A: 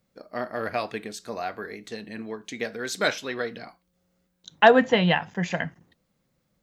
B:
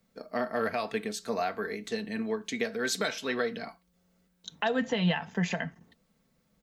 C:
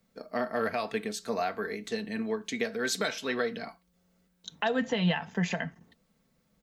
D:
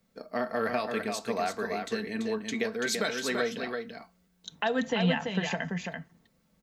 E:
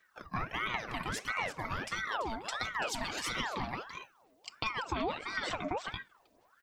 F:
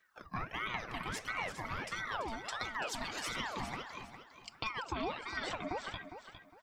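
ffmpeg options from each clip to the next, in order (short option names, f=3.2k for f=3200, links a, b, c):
-filter_complex "[0:a]aecho=1:1:4.5:0.43,acrossover=split=150|3000[a][b][c];[b]acompressor=threshold=-22dB:ratio=3[d];[a][d][c]amix=inputs=3:normalize=0,alimiter=limit=-19dB:level=0:latency=1:release=276,volume=1dB"
-af anull
-af "aecho=1:1:336:0.562"
-af "aphaser=in_gain=1:out_gain=1:delay=1.6:decay=0.49:speed=1.4:type=sinusoidal,acompressor=threshold=-29dB:ratio=6,aeval=exprs='val(0)*sin(2*PI*1100*n/s+1100*0.6/1.5*sin(2*PI*1.5*n/s))':c=same"
-af "aecho=1:1:407|814|1221:0.299|0.0776|0.0202,volume=-3.5dB"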